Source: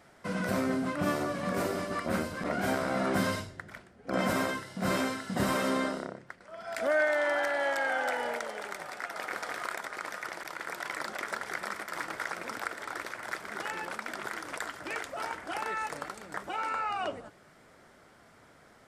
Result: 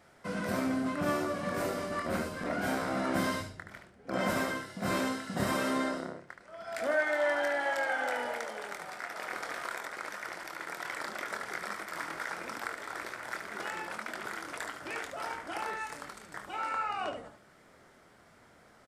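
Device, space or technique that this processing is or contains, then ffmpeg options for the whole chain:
slapback doubling: -filter_complex "[0:a]asettb=1/sr,asplit=3[a][b][c];[a]atrim=end=15.764[d];[b]atrim=start=15.76:end=16.53,asetpts=PTS-STARTPTS,afade=t=in:d=0.004:c=qsin,afade=t=out:st=0.766:d=0.004:c=qsin,equalizer=f=540:w=0.43:g=-5.5[e];[c]atrim=start=16.526[f];[d][e]acrossfade=d=0.004:c1=hsin:c2=qsin[g];[g][f]acrossfade=d=0.004:c1=qsin:c2=hsin,asplit=3[h][i][j];[i]adelay=24,volume=-7dB[k];[j]adelay=73,volume=-7dB[l];[h][k][l]amix=inputs=3:normalize=0,volume=-3dB"

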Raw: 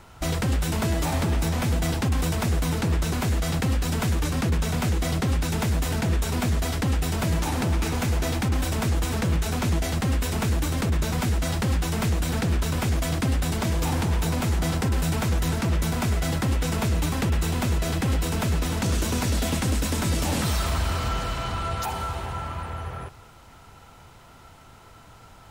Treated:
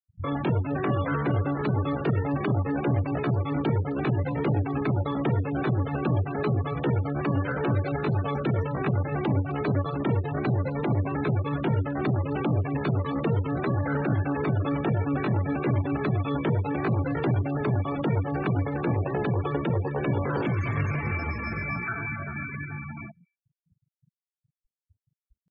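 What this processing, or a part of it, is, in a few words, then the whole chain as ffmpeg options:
chipmunk voice: -filter_complex "[0:a]asetrate=76340,aresample=44100,atempo=0.577676,aemphasis=mode=reproduction:type=50fm,afftfilt=real='re*gte(hypot(re,im),0.0355)':imag='im*gte(hypot(re,im),0.0355)':win_size=1024:overlap=0.75,lowshelf=f=77:g=-3,acrossover=split=150|6000[a][b][c];[b]adelay=40[d];[c]adelay=300[e];[a][d][e]amix=inputs=3:normalize=0"

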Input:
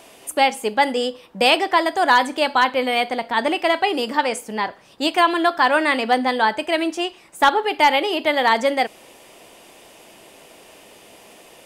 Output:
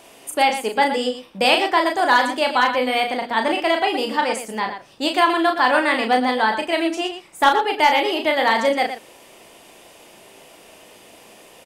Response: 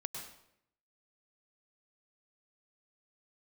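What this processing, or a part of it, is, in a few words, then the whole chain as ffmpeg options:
slapback doubling: -filter_complex "[0:a]asplit=3[a][b][c];[b]adelay=36,volume=-5dB[d];[c]adelay=118,volume=-9.5dB[e];[a][d][e]amix=inputs=3:normalize=0,volume=-1.5dB"

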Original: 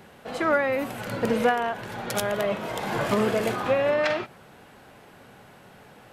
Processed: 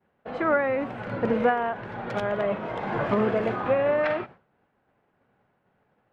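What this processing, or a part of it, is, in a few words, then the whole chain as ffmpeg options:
hearing-loss simulation: -af "lowpass=2k,agate=range=-33dB:threshold=-38dB:ratio=3:detection=peak"

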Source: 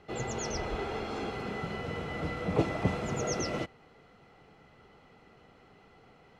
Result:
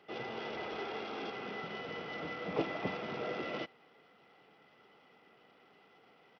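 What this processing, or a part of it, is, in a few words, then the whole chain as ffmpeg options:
Bluetooth headset: -af "highpass=230,highshelf=f=3.3k:g=9.5,aresample=8000,aresample=44100,volume=-5dB" -ar 44100 -c:a sbc -b:a 64k

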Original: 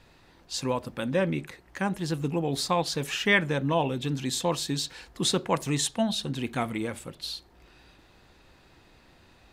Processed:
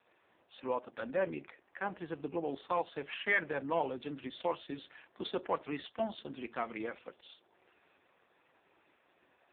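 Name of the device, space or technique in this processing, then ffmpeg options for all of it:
telephone: -filter_complex "[0:a]asettb=1/sr,asplit=3[a][b][c];[a]atrim=end=6.664[d];[b]atrim=start=6.66:end=7.12,asetpts=PTS-STARTPTS,afade=t=in:d=0.004:c=qsin,afade=t=out:st=0.456:d=0.004:c=qsin,equalizer=f=4k:t=o:w=2.3:g=3[e];[c]atrim=start=7.116[f];[d][e]acrossfade=d=0.004:c1=hsin:c2=qsin[g];[g][f]acrossfade=d=0.004:c1=qsin:c2=hsin,highpass=370,lowpass=3.1k,asoftclip=type=tanh:threshold=-17dB,volume=-3.5dB" -ar 8000 -c:a libopencore_amrnb -b:a 4750

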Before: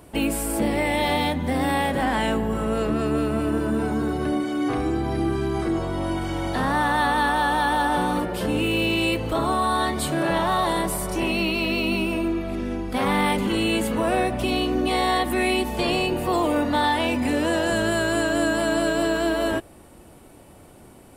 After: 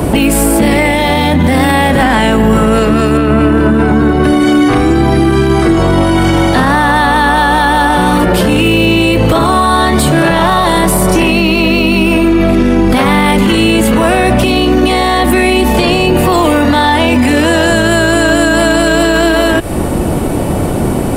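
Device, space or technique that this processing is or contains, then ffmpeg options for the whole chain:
mastering chain: -filter_complex "[0:a]equalizer=f=170:t=o:w=0.77:g=2.5,acrossover=split=85|1300[a][b][c];[a]acompressor=threshold=-45dB:ratio=4[d];[b]acompressor=threshold=-33dB:ratio=4[e];[c]acompressor=threshold=-31dB:ratio=4[f];[d][e][f]amix=inputs=3:normalize=0,acompressor=threshold=-34dB:ratio=2.5,asoftclip=type=tanh:threshold=-24.5dB,tiltshelf=f=1.1k:g=4,alimiter=level_in=32.5dB:limit=-1dB:release=50:level=0:latency=1,asettb=1/sr,asplit=3[g][h][i];[g]atrim=end=3.174[j];[h]atrim=start=3.17:end=4.24,asetpts=PTS-STARTPTS,afade=t=in:d=0.004:c=qsin,afade=t=out:st=1.066:d=0.004:c=qsin,bass=f=250:g=0,treble=f=4k:g=-12[k];[i]atrim=start=4.236[l];[j][k]acrossfade=d=0.004:c1=hsin:c2=qsin[m];[m][l]acrossfade=d=0.004:c1=qsin:c2=hsin,volume=-1dB"

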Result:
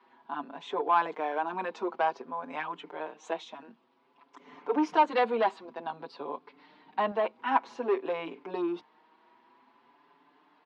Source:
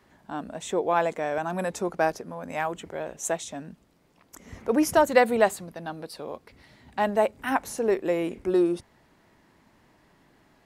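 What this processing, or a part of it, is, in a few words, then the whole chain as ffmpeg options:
barber-pole flanger into a guitar amplifier: -filter_complex "[0:a]asplit=2[a][b];[b]adelay=5.7,afreqshift=0.53[c];[a][c]amix=inputs=2:normalize=1,asoftclip=type=tanh:threshold=-18.5dB,highpass=f=240:w=0.5412,highpass=f=240:w=1.3066,highpass=90,equalizer=f=120:t=q:w=4:g=4,equalizer=f=200:t=q:w=4:g=-7,equalizer=f=330:t=q:w=4:g=-3,equalizer=f=580:t=q:w=4:g=-8,equalizer=f=980:t=q:w=4:g=9,equalizer=f=1.9k:t=q:w=4:g=-5,lowpass=f=3.8k:w=0.5412,lowpass=f=3.8k:w=1.3066,asettb=1/sr,asplit=3[d][e][f];[d]atrim=end=5.654[g];[e]atrim=start=5.65:end=7.12,asetpts=PTS-STARTPTS,afade=t=in:d=0.004:c=qsin,afade=t=out:st=1.466:d=0.004:c=qsin,lowshelf=f=410:g=6[h];[f]atrim=start=7.116[i];[g][h]acrossfade=d=0.004:c1=hsin:c2=qsin[j];[j][i]acrossfade=d=0.004:c1=qsin:c2=hsin,volume=1.5dB"

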